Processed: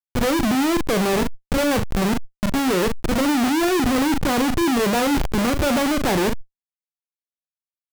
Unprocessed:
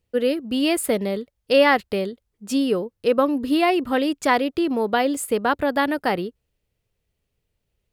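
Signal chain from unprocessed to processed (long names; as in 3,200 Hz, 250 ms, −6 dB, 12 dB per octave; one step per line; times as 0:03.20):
hearing-aid frequency compression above 1,800 Hz 1.5 to 1
treble cut that deepens with the level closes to 680 Hz, closed at −14 dBFS
0:03.35–0:05.63: low-shelf EQ 350 Hz +9 dB
low-pass that shuts in the quiet parts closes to 660 Hz, open at −12 dBFS
brickwall limiter −14 dBFS, peak gain reduction 8 dB
volume swells 206 ms
bit reduction 6 bits
phaser swept by the level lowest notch 490 Hz, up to 2,000 Hz, full sweep at −19 dBFS
comparator with hysteresis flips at −33.5 dBFS
double-tracking delay 38 ms −11 dB
level that may fall only so fast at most 41 dB per second
level +6 dB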